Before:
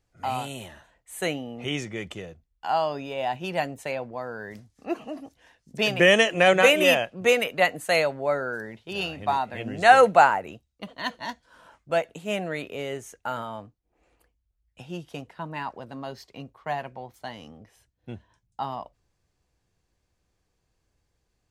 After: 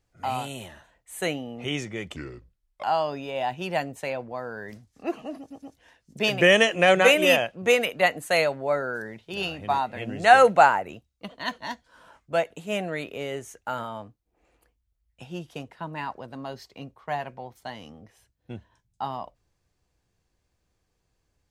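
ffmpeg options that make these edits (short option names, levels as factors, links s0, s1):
-filter_complex "[0:a]asplit=5[s0][s1][s2][s3][s4];[s0]atrim=end=2.164[s5];[s1]atrim=start=2.16:end=2.66,asetpts=PTS-STARTPTS,asetrate=32634,aresample=44100,atrim=end_sample=29797,asetpts=PTS-STARTPTS[s6];[s2]atrim=start=2.656:end=5.332[s7];[s3]atrim=start=5.208:end=5.332[s8];[s4]atrim=start=5.208[s9];[s5][s6]acrossfade=d=0.004:c1=hsin:c2=hsin[s10];[s10][s7]acrossfade=d=0.004:c1=hsin:c2=hsin[s11];[s11][s8]acrossfade=d=0.004:c1=hsin:c2=hsin[s12];[s12][s9]acrossfade=d=0.004:c1=hsin:c2=hsin"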